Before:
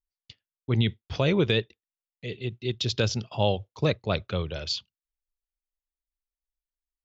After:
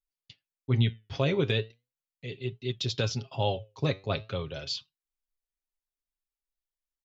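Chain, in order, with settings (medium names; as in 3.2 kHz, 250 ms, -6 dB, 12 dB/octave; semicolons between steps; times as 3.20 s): flange 0.38 Hz, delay 4.5 ms, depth 6.1 ms, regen +80%; comb 7.4 ms, depth 49%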